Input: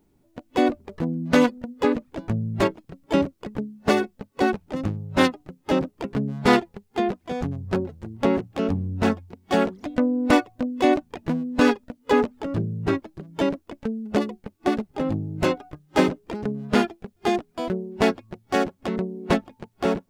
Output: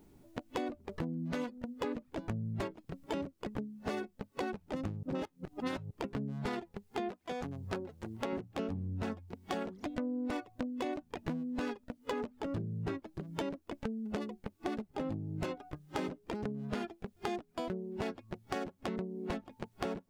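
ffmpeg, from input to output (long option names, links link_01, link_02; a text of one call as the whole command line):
ffmpeg -i in.wav -filter_complex "[0:a]asettb=1/sr,asplit=3[link_01][link_02][link_03];[link_01]atrim=end=7.094[link_04];[link_02]atrim=start=7.09:end=8.33,asetpts=PTS-STARTPTS,afade=type=in:duration=0.004:curve=qsin,afade=type=out:start_time=1.236:duration=0.004:curve=qsin,lowshelf=frequency=300:gain=-10.5[link_05];[link_03]atrim=start=8.326[link_06];[link_04][link_05]acrossfade=duration=0.004:curve1=hsin:curve2=qsin[link_07];[link_07][link_06]acrossfade=duration=0.004:curve1=qsin:curve2=hsin,asplit=3[link_08][link_09][link_10];[link_08]atrim=end=5.032[link_11];[link_09]atrim=start=5.028:end=5.912,asetpts=PTS-STARTPTS,areverse[link_12];[link_10]atrim=start=5.908[link_13];[link_11][link_12]acrossfade=duration=0.004:curve1=hsin:curve2=hsin[link_14];[link_14][link_13]acrossfade=duration=0.004:curve1=hsin:curve2=hsin,alimiter=limit=-14.5dB:level=0:latency=1:release=61,acompressor=threshold=-41dB:ratio=4,volume=3.5dB" out.wav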